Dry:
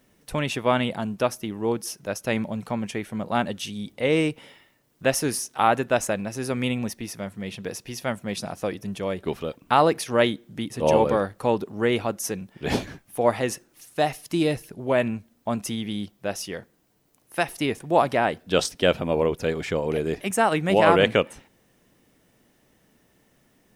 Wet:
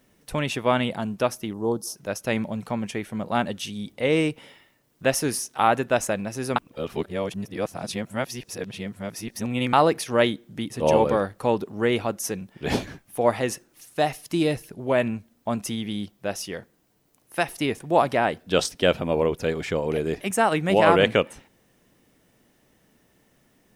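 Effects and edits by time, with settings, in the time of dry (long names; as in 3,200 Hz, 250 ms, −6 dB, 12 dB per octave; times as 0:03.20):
0:01.53–0:01.96: Butterworth band-reject 2,200 Hz, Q 0.72
0:06.56–0:09.73: reverse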